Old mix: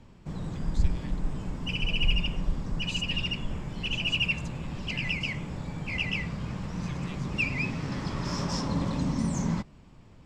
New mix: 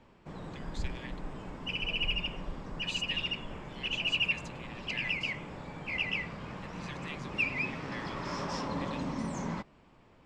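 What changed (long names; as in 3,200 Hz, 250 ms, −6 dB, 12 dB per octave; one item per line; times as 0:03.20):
speech +6.5 dB
master: add bass and treble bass −12 dB, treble −10 dB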